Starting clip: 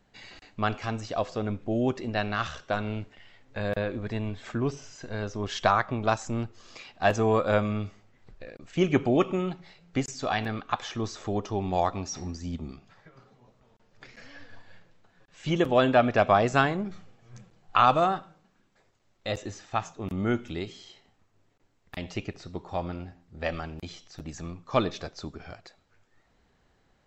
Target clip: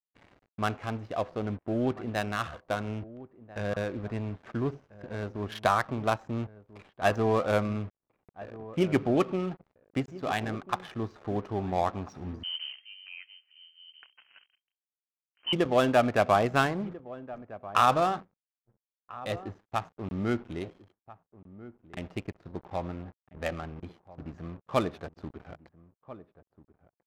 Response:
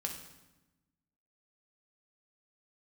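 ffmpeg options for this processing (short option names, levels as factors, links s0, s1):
-filter_complex "[0:a]highpass=48,acrusher=bits=6:mix=0:aa=0.5,adynamicsmooth=sensitivity=5:basefreq=930,asplit=2[s0][s1];[s1]adelay=1341,volume=0.141,highshelf=f=4000:g=-30.2[s2];[s0][s2]amix=inputs=2:normalize=0,asettb=1/sr,asplit=3[s3][s4][s5];[s3]atrim=end=12.434[s6];[s4]atrim=start=12.43:end=15.53,asetpts=PTS-STARTPTS,afade=t=in:d=0.004:c=qsin,afade=t=out:st=3.096:d=0.004:c=qsin,lowpass=f=2700:t=q:w=0.5098,lowpass=f=2700:t=q:w=0.6013,lowpass=f=2700:t=q:w=0.9,lowpass=f=2700:t=q:w=2.563,afreqshift=-3200[s7];[s5]atrim=start=15.526[s8];[s6][s7]acrossfade=d=0.004:c1=hsin:c2=qsin[s9];[s9][s8]acrossfade=d=0.004:c1=qsin:c2=hsin,volume=0.794"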